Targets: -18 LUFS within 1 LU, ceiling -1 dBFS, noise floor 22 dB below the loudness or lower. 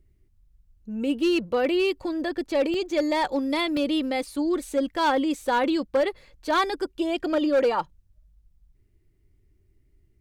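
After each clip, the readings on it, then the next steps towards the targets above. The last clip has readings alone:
clipped samples 1.0%; clipping level -16.5 dBFS; dropouts 2; longest dropout 1.6 ms; loudness -25.0 LUFS; peak level -16.5 dBFS; loudness target -18.0 LUFS
-> clip repair -16.5 dBFS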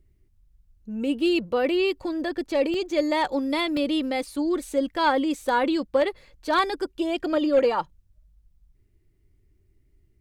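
clipped samples 0.0%; dropouts 2; longest dropout 1.6 ms
-> interpolate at 2.74/3.77 s, 1.6 ms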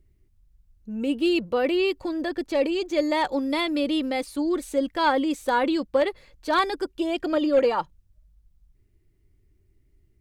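dropouts 0; loudness -24.5 LUFS; peak level -8.0 dBFS; loudness target -18.0 LUFS
-> trim +6.5 dB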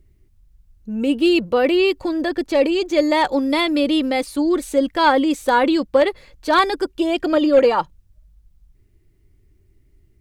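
loudness -18.0 LUFS; peak level -1.5 dBFS; noise floor -57 dBFS

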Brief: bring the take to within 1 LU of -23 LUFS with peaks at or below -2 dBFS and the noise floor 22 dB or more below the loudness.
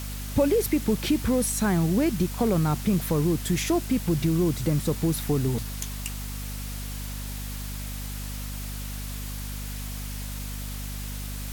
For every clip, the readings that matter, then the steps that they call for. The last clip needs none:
hum 50 Hz; highest harmonic 250 Hz; hum level -32 dBFS; noise floor -34 dBFS; noise floor target -50 dBFS; loudness -27.5 LUFS; peak level -12.0 dBFS; loudness target -23.0 LUFS
-> de-hum 50 Hz, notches 5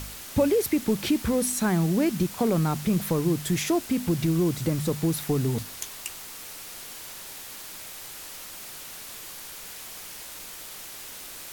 hum not found; noise floor -41 dBFS; noise floor target -50 dBFS
-> noise print and reduce 9 dB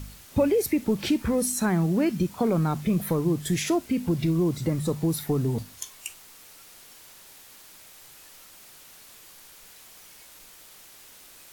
noise floor -50 dBFS; loudness -25.5 LUFS; peak level -12.0 dBFS; loudness target -23.0 LUFS
-> trim +2.5 dB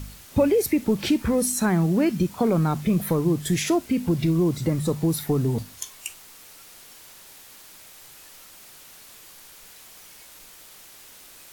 loudness -23.0 LUFS; peak level -9.5 dBFS; noise floor -48 dBFS

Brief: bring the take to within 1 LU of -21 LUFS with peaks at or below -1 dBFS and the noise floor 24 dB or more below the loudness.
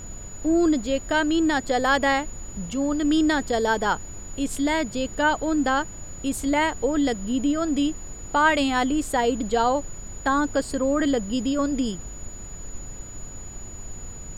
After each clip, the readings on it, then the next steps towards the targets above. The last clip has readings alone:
steady tone 6.9 kHz; tone level -40 dBFS; noise floor -39 dBFS; noise floor target -48 dBFS; loudness -23.5 LUFS; peak level -7.0 dBFS; loudness target -21.0 LUFS
-> band-stop 6.9 kHz, Q 30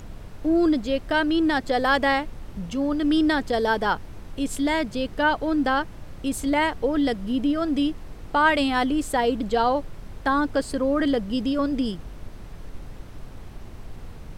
steady tone not found; noise floor -41 dBFS; noise floor target -48 dBFS
-> noise print and reduce 7 dB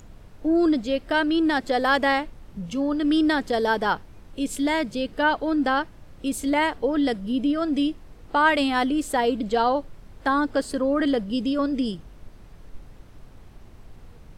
noise floor -47 dBFS; noise floor target -48 dBFS
-> noise print and reduce 6 dB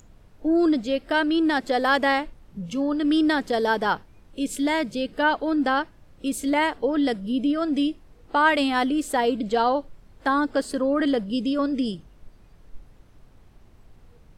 noise floor -53 dBFS; loudness -23.5 LUFS; peak level -7.5 dBFS; loudness target -21.0 LUFS
-> trim +2.5 dB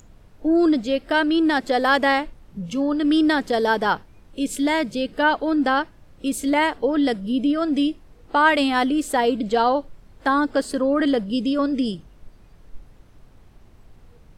loudness -21.0 LUFS; peak level -5.0 dBFS; noise floor -50 dBFS

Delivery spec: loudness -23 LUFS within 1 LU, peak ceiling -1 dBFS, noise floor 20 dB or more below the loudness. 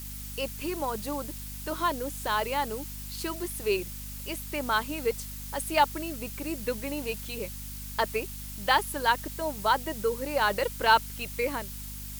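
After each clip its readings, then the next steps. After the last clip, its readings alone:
hum 50 Hz; highest harmonic 250 Hz; hum level -39 dBFS; noise floor -39 dBFS; noise floor target -50 dBFS; loudness -30.0 LUFS; peak level -8.5 dBFS; loudness target -23.0 LUFS
-> hum notches 50/100/150/200/250 Hz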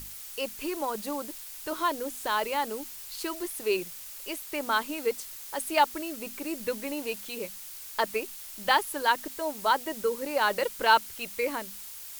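hum not found; noise floor -43 dBFS; noise floor target -50 dBFS
-> noise reduction 7 dB, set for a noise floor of -43 dBFS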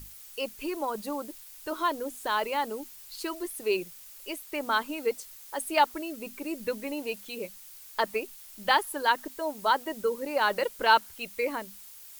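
noise floor -49 dBFS; noise floor target -50 dBFS
-> noise reduction 6 dB, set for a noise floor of -49 dBFS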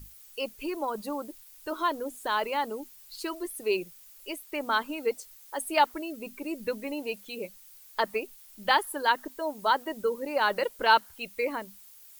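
noise floor -53 dBFS; loudness -30.0 LUFS; peak level -9.0 dBFS; loudness target -23.0 LUFS
-> trim +7 dB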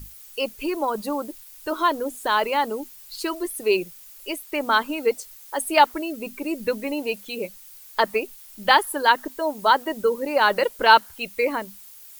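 loudness -23.0 LUFS; peak level -2.0 dBFS; noise floor -46 dBFS

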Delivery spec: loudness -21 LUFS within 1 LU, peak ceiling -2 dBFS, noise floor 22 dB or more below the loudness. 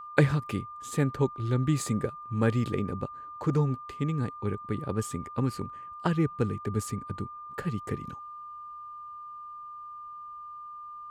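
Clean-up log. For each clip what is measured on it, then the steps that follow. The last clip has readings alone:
steady tone 1.2 kHz; tone level -40 dBFS; loudness -30.5 LUFS; peak level -6.5 dBFS; loudness target -21.0 LUFS
-> band-stop 1.2 kHz, Q 30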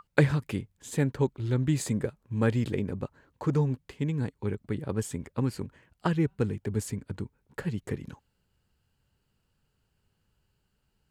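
steady tone not found; loudness -30.5 LUFS; peak level -6.5 dBFS; loudness target -21.0 LUFS
-> trim +9.5 dB; peak limiter -2 dBFS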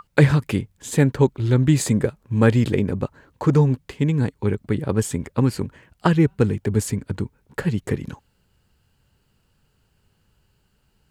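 loudness -21.5 LUFS; peak level -2.0 dBFS; noise floor -66 dBFS

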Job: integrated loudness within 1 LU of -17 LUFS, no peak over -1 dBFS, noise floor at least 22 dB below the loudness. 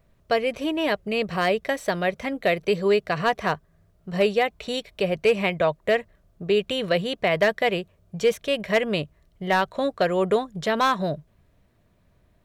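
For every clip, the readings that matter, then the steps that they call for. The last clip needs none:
clipped samples 0.2%; clipping level -12.0 dBFS; loudness -24.0 LUFS; peak level -12.0 dBFS; loudness target -17.0 LUFS
-> clip repair -12 dBFS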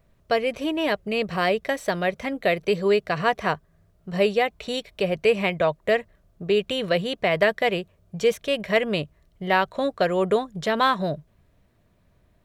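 clipped samples 0.0%; loudness -24.0 LUFS; peak level -6.0 dBFS; loudness target -17.0 LUFS
-> trim +7 dB; peak limiter -1 dBFS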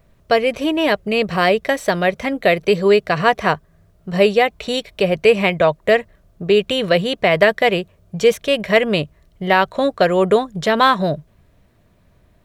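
loudness -17.0 LUFS; peak level -1.0 dBFS; noise floor -56 dBFS

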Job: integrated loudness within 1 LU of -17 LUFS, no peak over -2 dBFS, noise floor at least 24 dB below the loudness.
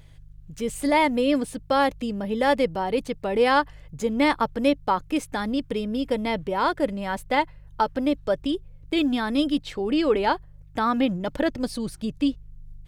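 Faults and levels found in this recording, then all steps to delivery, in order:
hum 50 Hz; highest harmonic 150 Hz; hum level -48 dBFS; loudness -25.0 LUFS; peak level -8.0 dBFS; loudness target -17.0 LUFS
-> de-hum 50 Hz, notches 3; trim +8 dB; peak limiter -2 dBFS

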